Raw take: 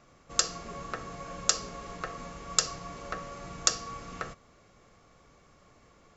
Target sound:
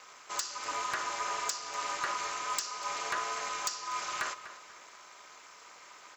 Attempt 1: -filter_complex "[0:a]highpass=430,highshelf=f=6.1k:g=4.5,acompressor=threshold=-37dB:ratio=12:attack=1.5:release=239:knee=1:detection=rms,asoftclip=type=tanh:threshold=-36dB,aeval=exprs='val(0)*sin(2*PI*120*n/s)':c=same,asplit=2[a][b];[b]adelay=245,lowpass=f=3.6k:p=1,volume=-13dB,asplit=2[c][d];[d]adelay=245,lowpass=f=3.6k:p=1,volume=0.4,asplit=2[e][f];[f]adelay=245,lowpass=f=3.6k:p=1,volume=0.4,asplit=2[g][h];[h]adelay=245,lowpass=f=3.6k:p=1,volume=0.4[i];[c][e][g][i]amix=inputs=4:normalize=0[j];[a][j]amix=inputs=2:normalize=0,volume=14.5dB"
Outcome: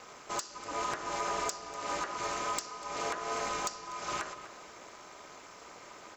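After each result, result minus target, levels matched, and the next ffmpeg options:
compressor: peak gain reduction +8 dB; 500 Hz band +7.5 dB
-filter_complex "[0:a]highpass=430,highshelf=f=6.1k:g=4.5,acompressor=threshold=-28dB:ratio=12:attack=1.5:release=239:knee=1:detection=rms,asoftclip=type=tanh:threshold=-36dB,aeval=exprs='val(0)*sin(2*PI*120*n/s)':c=same,asplit=2[a][b];[b]adelay=245,lowpass=f=3.6k:p=1,volume=-13dB,asplit=2[c][d];[d]adelay=245,lowpass=f=3.6k:p=1,volume=0.4,asplit=2[e][f];[f]adelay=245,lowpass=f=3.6k:p=1,volume=0.4,asplit=2[g][h];[h]adelay=245,lowpass=f=3.6k:p=1,volume=0.4[i];[c][e][g][i]amix=inputs=4:normalize=0[j];[a][j]amix=inputs=2:normalize=0,volume=14.5dB"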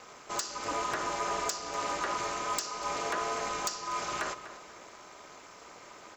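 500 Hz band +7.0 dB
-filter_complex "[0:a]highpass=1k,highshelf=f=6.1k:g=4.5,acompressor=threshold=-28dB:ratio=12:attack=1.5:release=239:knee=1:detection=rms,asoftclip=type=tanh:threshold=-36dB,aeval=exprs='val(0)*sin(2*PI*120*n/s)':c=same,asplit=2[a][b];[b]adelay=245,lowpass=f=3.6k:p=1,volume=-13dB,asplit=2[c][d];[d]adelay=245,lowpass=f=3.6k:p=1,volume=0.4,asplit=2[e][f];[f]adelay=245,lowpass=f=3.6k:p=1,volume=0.4,asplit=2[g][h];[h]adelay=245,lowpass=f=3.6k:p=1,volume=0.4[i];[c][e][g][i]amix=inputs=4:normalize=0[j];[a][j]amix=inputs=2:normalize=0,volume=14.5dB"

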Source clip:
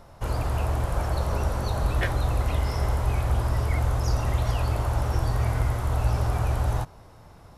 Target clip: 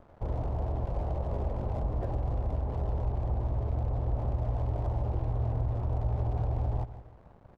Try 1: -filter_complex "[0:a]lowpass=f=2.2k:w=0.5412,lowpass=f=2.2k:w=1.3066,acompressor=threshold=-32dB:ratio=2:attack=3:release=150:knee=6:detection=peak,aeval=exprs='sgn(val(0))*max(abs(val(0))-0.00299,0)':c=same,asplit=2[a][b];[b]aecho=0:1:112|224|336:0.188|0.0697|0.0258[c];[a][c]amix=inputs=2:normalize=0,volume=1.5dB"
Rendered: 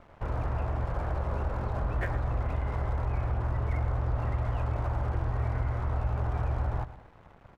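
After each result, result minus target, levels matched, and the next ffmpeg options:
2000 Hz band +14.5 dB; echo 45 ms early
-filter_complex "[0:a]lowpass=f=830:w=0.5412,lowpass=f=830:w=1.3066,acompressor=threshold=-32dB:ratio=2:attack=3:release=150:knee=6:detection=peak,aeval=exprs='sgn(val(0))*max(abs(val(0))-0.00299,0)':c=same,asplit=2[a][b];[b]aecho=0:1:112|224|336:0.188|0.0697|0.0258[c];[a][c]amix=inputs=2:normalize=0,volume=1.5dB"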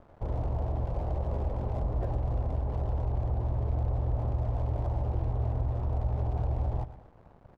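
echo 45 ms early
-filter_complex "[0:a]lowpass=f=830:w=0.5412,lowpass=f=830:w=1.3066,acompressor=threshold=-32dB:ratio=2:attack=3:release=150:knee=6:detection=peak,aeval=exprs='sgn(val(0))*max(abs(val(0))-0.00299,0)':c=same,asplit=2[a][b];[b]aecho=0:1:157|314|471:0.188|0.0697|0.0258[c];[a][c]amix=inputs=2:normalize=0,volume=1.5dB"

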